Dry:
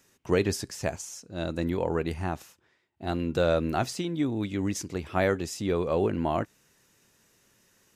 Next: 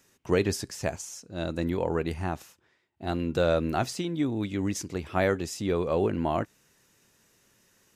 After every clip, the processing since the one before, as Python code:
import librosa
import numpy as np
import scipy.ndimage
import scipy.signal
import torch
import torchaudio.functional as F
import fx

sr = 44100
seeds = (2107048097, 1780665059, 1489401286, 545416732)

y = x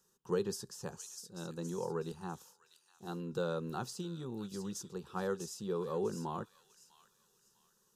y = fx.fixed_phaser(x, sr, hz=430.0, stages=8)
y = fx.echo_wet_highpass(y, sr, ms=649, feedback_pct=31, hz=3200.0, wet_db=-5.5)
y = y * librosa.db_to_amplitude(-7.5)